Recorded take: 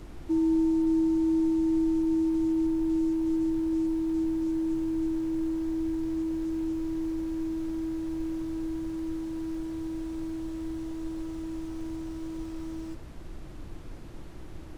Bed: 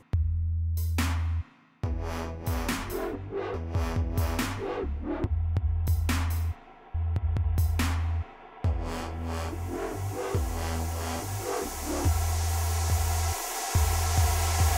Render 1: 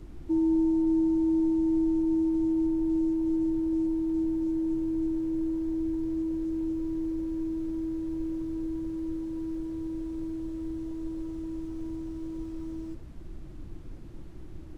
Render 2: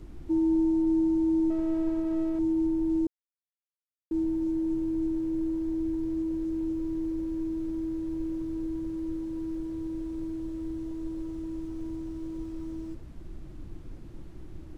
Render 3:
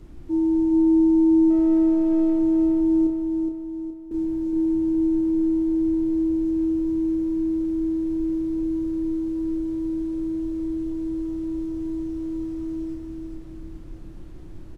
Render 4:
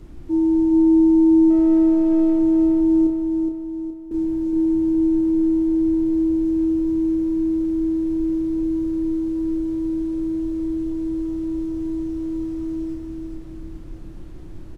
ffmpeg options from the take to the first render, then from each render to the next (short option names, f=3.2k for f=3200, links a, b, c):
-af "afftdn=nr=8:nf=-42"
-filter_complex "[0:a]asettb=1/sr,asplit=3[a][b][c];[a]atrim=end=1.504[d];[b]atrim=start=1.5:end=2.39,asetpts=PTS-STARTPTS,afade=t=in:d=0.004:c=qsin,afade=t=out:st=0.886:d=0.004:c=qsin,aeval=exprs='if(lt(val(0),0),0.447*val(0),val(0))':c=same[e];[c]atrim=start=2.386[f];[d][e]acrossfade=d=0.004:c1=hsin:c2=qsin[g];[g][f]acrossfade=d=0.004:c1=qsin:c2=hsin,asplit=3[h][i][j];[h]atrim=end=3.07,asetpts=PTS-STARTPTS,afade=t=out:st=3.066:d=0.004:c=hsin[k];[i]atrim=start=3.07:end=4.11,asetpts=PTS-STARTPTS,volume=0[l];[j]atrim=start=4.11,asetpts=PTS-STARTPTS,afade=t=in:d=0.004:c=hsin[m];[k][l][m]concat=n=3:v=0:a=1"
-filter_complex "[0:a]asplit=2[a][b];[b]adelay=31,volume=-5.5dB[c];[a][c]amix=inputs=2:normalize=0,asplit=2[d][e];[e]aecho=0:1:418|836|1254|1672|2090|2508:0.596|0.268|0.121|0.0543|0.0244|0.011[f];[d][f]amix=inputs=2:normalize=0"
-af "volume=3dB"